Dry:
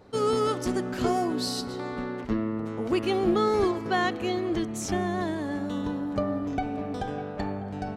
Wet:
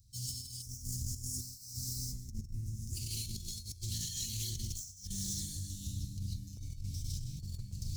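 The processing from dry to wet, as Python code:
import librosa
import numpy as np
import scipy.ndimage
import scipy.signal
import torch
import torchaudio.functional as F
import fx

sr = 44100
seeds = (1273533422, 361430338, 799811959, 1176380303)

y = scipy.signal.medfilt(x, 5)
y = scipy.signal.sosfilt(scipy.signal.ellip(3, 1.0, 70, [100.0, 5800.0], 'bandstop', fs=sr, output='sos'), y)
y = fx.high_shelf(y, sr, hz=4200.0, db=7.5)
y = y + 10.0 ** (-13.0 / 20.0) * np.pad(y, (int(352 * sr / 1000.0), 0))[:len(y)]
y = fx.tremolo_random(y, sr, seeds[0], hz=3.5, depth_pct=55)
y = fx.hum_notches(y, sr, base_hz=50, count=3)
y = fx.rev_gated(y, sr, seeds[1], gate_ms=180, shape='rising', drr_db=-5.5)
y = fx.over_compress(y, sr, threshold_db=-43.0, ratio=-0.5)
y = fx.band_shelf(y, sr, hz=3200.0, db=-13.5, octaves=1.2, at=(0.62, 2.97))
y = fx.doppler_dist(y, sr, depth_ms=0.23)
y = y * librosa.db_to_amplitude(4.5)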